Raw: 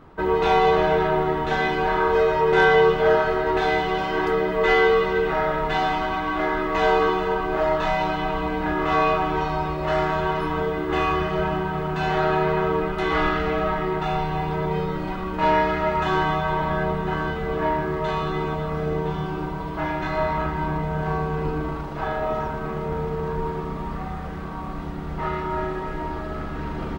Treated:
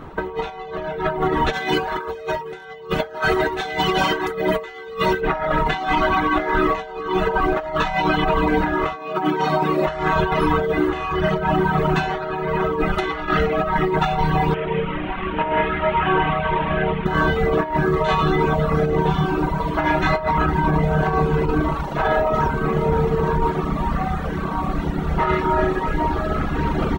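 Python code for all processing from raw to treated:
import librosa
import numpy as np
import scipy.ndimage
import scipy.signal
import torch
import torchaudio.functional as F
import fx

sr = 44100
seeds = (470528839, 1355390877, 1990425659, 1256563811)

y = fx.chain(x, sr, fx.highpass(hz=42.0, slope=12),
    fx.high_shelf(hz=4600.0, db=11.5), at=(1.53, 5.21))
y = fx.chain(y, sr, fx.highpass_res(hz=220.0, q=1.6),
    fx.high_shelf(hz=12000.0, db=6.0), at=(8.96, 9.87))
y = fx.chain(y, sr, fx.delta_mod(bps=16000, step_db=-25.5),
    fx.comb_fb(f0_hz=230.0, decay_s=0.35, harmonics='all', damping=0.0, mix_pct=50), at=(14.54, 17.06))
y = fx.dereverb_blind(y, sr, rt60_s=1.3)
y = fx.over_compress(y, sr, threshold_db=-28.0, ratio=-0.5)
y = fx.notch(y, sr, hz=4900.0, q=9.3)
y = y * 10.0 ** (8.5 / 20.0)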